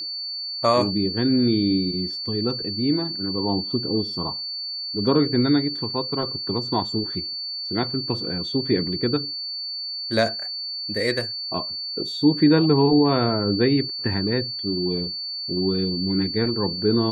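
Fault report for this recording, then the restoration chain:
whine 4.5 kHz -28 dBFS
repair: band-stop 4.5 kHz, Q 30

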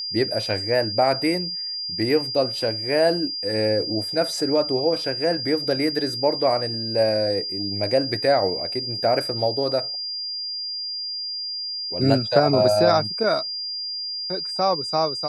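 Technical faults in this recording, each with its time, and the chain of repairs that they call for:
whine 4.8 kHz -27 dBFS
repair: band-stop 4.8 kHz, Q 30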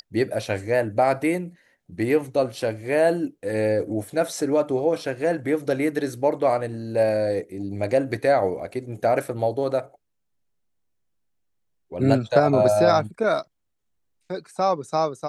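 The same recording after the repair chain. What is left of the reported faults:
nothing left

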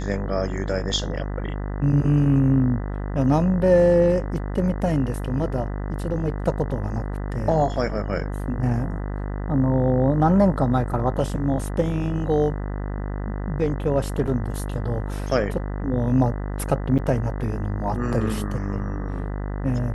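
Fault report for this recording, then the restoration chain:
buzz 50 Hz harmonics 40 -28 dBFS
14.27–14.28 s: dropout 5.8 ms
16.98–16.99 s: dropout 7.8 ms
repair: de-hum 50 Hz, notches 40; interpolate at 14.27 s, 5.8 ms; interpolate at 16.98 s, 7.8 ms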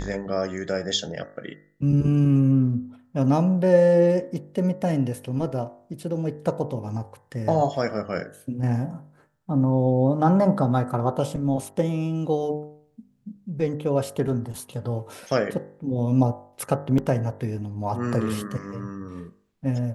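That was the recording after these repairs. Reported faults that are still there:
nothing left

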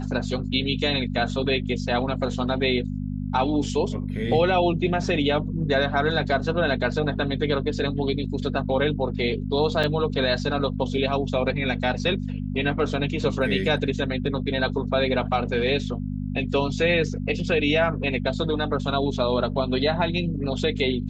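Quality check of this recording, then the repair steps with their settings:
hum 50 Hz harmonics 5 -29 dBFS
9.83–9.84 s: dropout 5.5 ms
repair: de-hum 50 Hz, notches 5; interpolate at 9.83 s, 5.5 ms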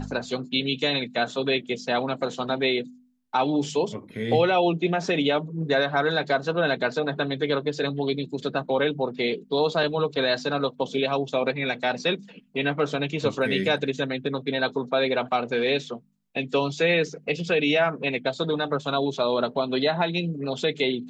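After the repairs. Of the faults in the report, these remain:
nothing left

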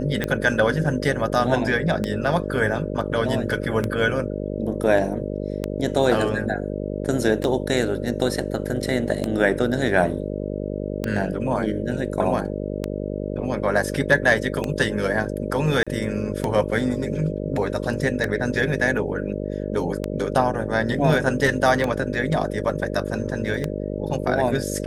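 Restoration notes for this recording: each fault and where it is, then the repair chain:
buzz 50 Hz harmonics 12 -28 dBFS
tick 33 1/3 rpm -10 dBFS
15.83–15.87 s: dropout 36 ms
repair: de-click; de-hum 50 Hz, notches 12; interpolate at 15.83 s, 36 ms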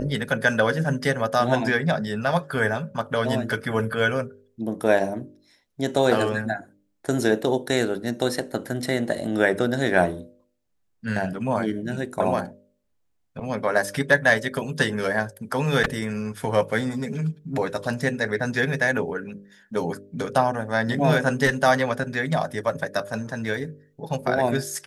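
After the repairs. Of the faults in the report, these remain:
nothing left

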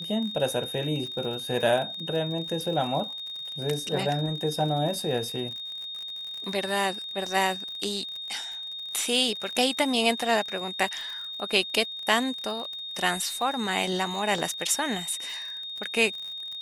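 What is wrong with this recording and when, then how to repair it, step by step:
crackle 53 per s -34 dBFS
whine 3.7 kHz -34 dBFS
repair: de-click; band-stop 3.7 kHz, Q 30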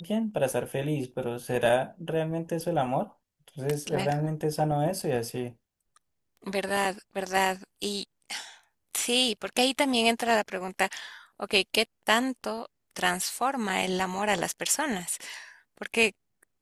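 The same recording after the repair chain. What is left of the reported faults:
nothing left

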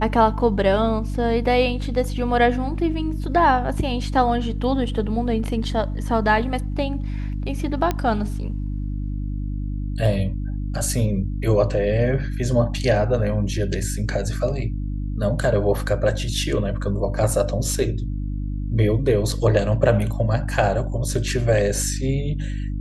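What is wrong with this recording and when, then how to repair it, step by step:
hum 50 Hz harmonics 6 -26 dBFS
7.91 s: pop -9 dBFS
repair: de-click; de-hum 50 Hz, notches 6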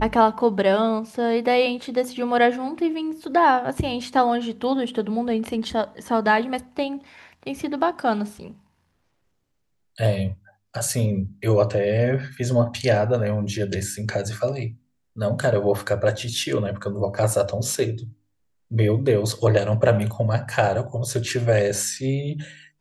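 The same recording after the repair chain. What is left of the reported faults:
nothing left

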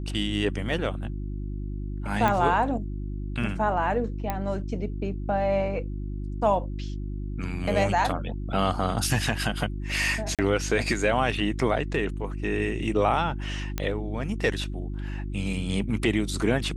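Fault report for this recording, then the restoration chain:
hum 50 Hz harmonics 7 -32 dBFS
2.28 s: pop -12 dBFS
4.30 s: pop -14 dBFS
10.35–10.39 s: dropout 37 ms
13.78 s: pop -13 dBFS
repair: de-click; de-hum 50 Hz, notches 7; interpolate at 10.35 s, 37 ms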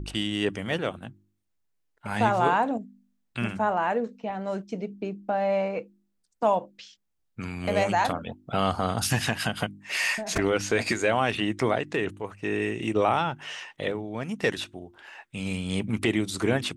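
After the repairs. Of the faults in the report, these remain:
nothing left

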